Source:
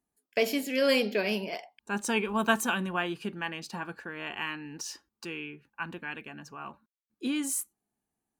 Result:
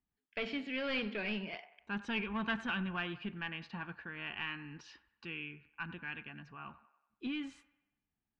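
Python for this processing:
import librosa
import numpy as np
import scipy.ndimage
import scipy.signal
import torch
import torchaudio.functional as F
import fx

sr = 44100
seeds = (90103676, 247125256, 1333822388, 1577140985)

p1 = np.clip(x, -10.0 ** (-28.0 / 20.0), 10.0 ** (-28.0 / 20.0))
p2 = x + (p1 * 10.0 ** (-6.0 / 20.0))
p3 = fx.low_shelf(p2, sr, hz=170.0, db=4.0)
p4 = 10.0 ** (-17.0 / 20.0) * np.tanh(p3 / 10.0 ** (-17.0 / 20.0))
p5 = scipy.signal.sosfilt(scipy.signal.butter(4, 3200.0, 'lowpass', fs=sr, output='sos'), p4)
p6 = fx.peak_eq(p5, sr, hz=520.0, db=-12.0, octaves=2.6)
p7 = p6 + fx.echo_wet_bandpass(p6, sr, ms=94, feedback_pct=49, hz=1100.0, wet_db=-14.5, dry=0)
y = p7 * 10.0 ** (-3.5 / 20.0)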